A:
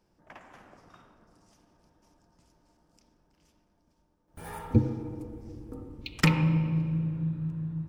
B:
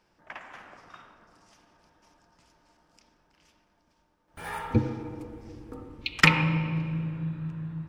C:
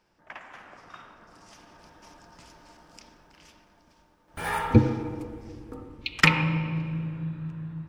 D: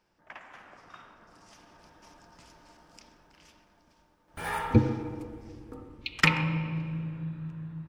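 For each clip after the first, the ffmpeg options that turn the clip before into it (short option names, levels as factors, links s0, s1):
-af "equalizer=f=2100:w=0.36:g=12.5,volume=0.75"
-af "dynaudnorm=f=600:g=5:m=4.47,volume=0.891"
-af "aecho=1:1:130:0.0708,volume=0.668"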